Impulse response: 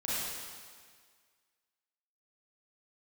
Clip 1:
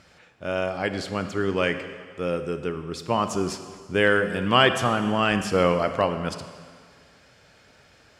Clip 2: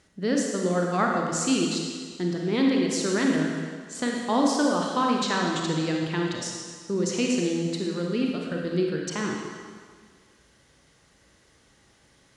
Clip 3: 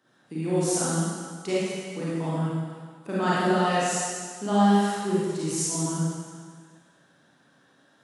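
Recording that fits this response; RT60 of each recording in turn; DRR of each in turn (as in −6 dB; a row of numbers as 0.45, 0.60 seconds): 3; 1.8, 1.8, 1.8 seconds; 9.0, −0.5, −9.5 decibels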